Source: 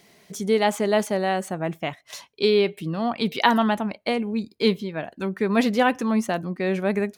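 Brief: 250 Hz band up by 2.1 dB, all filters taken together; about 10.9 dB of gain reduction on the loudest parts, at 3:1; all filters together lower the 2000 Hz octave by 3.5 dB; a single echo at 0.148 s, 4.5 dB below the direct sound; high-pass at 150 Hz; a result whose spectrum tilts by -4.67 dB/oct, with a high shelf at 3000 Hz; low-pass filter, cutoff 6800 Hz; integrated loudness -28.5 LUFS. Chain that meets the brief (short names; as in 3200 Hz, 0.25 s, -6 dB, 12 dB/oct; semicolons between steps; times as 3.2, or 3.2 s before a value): HPF 150 Hz; LPF 6800 Hz; bell 250 Hz +3.5 dB; bell 2000 Hz -5.5 dB; high shelf 3000 Hz +3 dB; compressor 3:1, threshold -29 dBFS; echo 0.148 s -4.5 dB; gain +1.5 dB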